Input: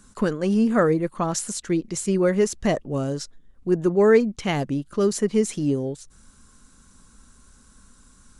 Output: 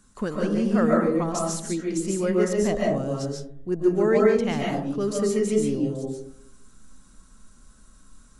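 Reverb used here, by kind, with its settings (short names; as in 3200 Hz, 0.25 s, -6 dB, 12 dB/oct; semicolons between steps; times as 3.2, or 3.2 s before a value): digital reverb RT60 0.69 s, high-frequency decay 0.3×, pre-delay 0.1 s, DRR -2.5 dB; gain -6 dB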